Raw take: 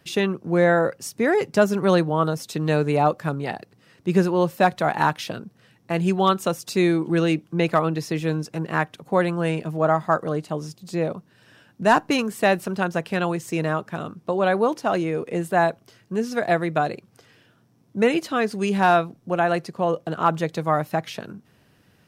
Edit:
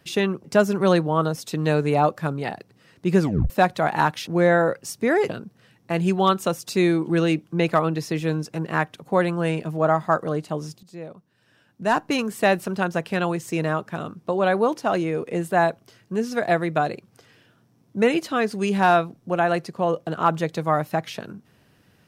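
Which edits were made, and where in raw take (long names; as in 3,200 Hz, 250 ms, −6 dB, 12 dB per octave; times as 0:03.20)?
0:00.44–0:01.46: move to 0:05.29
0:04.22: tape stop 0.30 s
0:10.83–0:12.33: fade in quadratic, from −13 dB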